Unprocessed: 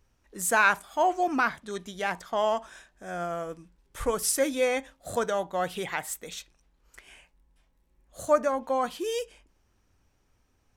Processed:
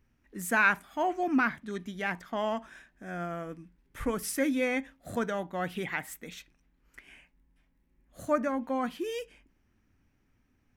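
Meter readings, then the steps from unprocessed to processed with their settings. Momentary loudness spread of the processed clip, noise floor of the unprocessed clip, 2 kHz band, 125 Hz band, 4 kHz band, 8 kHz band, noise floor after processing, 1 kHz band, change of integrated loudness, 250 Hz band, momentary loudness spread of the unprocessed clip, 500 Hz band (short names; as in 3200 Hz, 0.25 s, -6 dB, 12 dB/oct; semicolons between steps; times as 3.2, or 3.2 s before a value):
17 LU, -70 dBFS, -1.0 dB, +2.0 dB, -6.5 dB, -9.5 dB, -71 dBFS, -5.5 dB, -3.0 dB, +3.5 dB, 15 LU, -5.5 dB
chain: graphic EQ 125/250/500/1000/2000/4000/8000 Hz +3/+9/-4/-3/+6/-4/-7 dB; gain -3.5 dB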